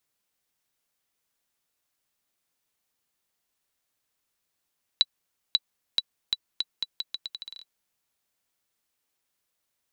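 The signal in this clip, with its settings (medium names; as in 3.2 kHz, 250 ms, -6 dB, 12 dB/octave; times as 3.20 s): bouncing ball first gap 0.54 s, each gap 0.8, 3.94 kHz, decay 38 ms -6.5 dBFS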